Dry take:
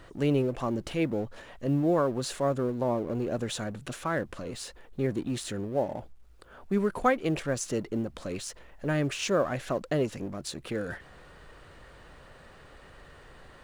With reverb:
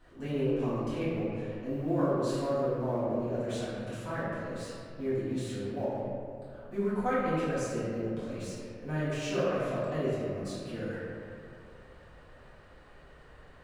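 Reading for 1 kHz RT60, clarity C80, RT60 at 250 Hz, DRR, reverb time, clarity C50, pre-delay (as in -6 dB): 2.2 s, -1.0 dB, 2.5 s, -13.5 dB, 2.4 s, -3.0 dB, 4 ms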